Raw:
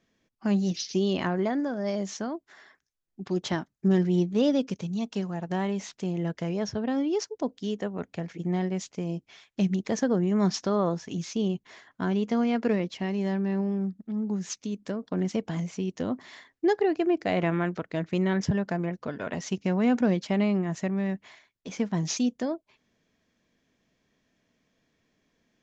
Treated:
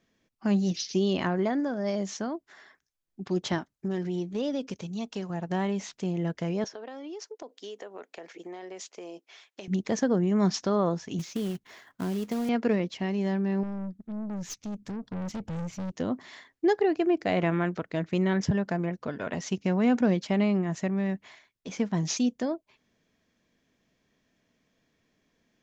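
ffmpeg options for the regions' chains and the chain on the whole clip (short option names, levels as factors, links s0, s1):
-filter_complex "[0:a]asettb=1/sr,asplit=3[s0][s1][s2];[s0]atrim=end=3.584[s3];[s1]atrim=start=3.58:end=5.3,asetpts=PTS-STARTPTS,afade=t=in:d=0.004:c=qsin,afade=t=out:st=1.716:d=0.004:c=qsin,equalizer=f=170:w=1.1:g=-5,acompressor=threshold=0.0398:ratio=2.5:attack=3.2:release=140:knee=1:detection=peak[s4];[s2]atrim=start=5.296[s5];[s3][s4]acrossfade=d=0.004:c1=hsin:c2=qsin[s6];[s6][s5]acrossfade=d=0.004:c1=qsin:c2=hsin,asettb=1/sr,asplit=3[s7][s8][s9];[s7]atrim=end=6.644[s10];[s8]atrim=start=6.64:end=9.68,asetpts=PTS-STARTPTS,afade=t=in:d=0.004:c=qsin,afade=t=out:st=3.036:d=0.004:c=qsin,highpass=f=360:w=0.5412,highpass=f=360:w=1.3066,acompressor=threshold=0.0158:ratio=16:attack=3.2:release=140:knee=1:detection=peak[s11];[s9]atrim=start=9.676[s12];[s10][s11]acrossfade=d=0.004:c1=hsin:c2=qsin[s13];[s13][s12]acrossfade=d=0.004:c1=qsin:c2=hsin,asettb=1/sr,asplit=3[s14][s15][s16];[s14]atrim=end=11.194[s17];[s15]atrim=start=11.19:end=12.49,asetpts=PTS-STARTPTS,afade=t=in:d=0.004:c=qsin,afade=t=out:st=1.296:d=0.004:c=qsin,acrossover=split=730|5600[s18][s19][s20];[s18]acompressor=threshold=0.0398:ratio=4[s21];[s19]acompressor=threshold=0.00501:ratio=4[s22];[s20]acompressor=threshold=0.00282:ratio=4[s23];[s21][s22][s23]amix=inputs=3:normalize=0,acrusher=bits=4:mode=log:mix=0:aa=0.000001[s24];[s16]atrim=start=12.486[s25];[s17][s24]acrossfade=d=0.004:c1=hsin:c2=qsin[s26];[s26][s25]acrossfade=d=0.004:c1=qsin:c2=hsin,asettb=1/sr,asplit=3[s27][s28][s29];[s27]atrim=end=13.634[s30];[s28]atrim=start=13.63:end=15.92,asetpts=PTS-STARTPTS,afade=t=in:d=0.004:c=qsin,afade=t=out:st=2.286:d=0.004:c=qsin,asubboost=boost=12:cutoff=160,aeval=exprs='(tanh(39.8*val(0)+0.35)-tanh(0.35))/39.8':c=same[s31];[s29]atrim=start=15.916[s32];[s30][s31]acrossfade=d=0.004:c1=hsin:c2=qsin[s33];[s33][s32]acrossfade=d=0.004:c1=qsin:c2=hsin"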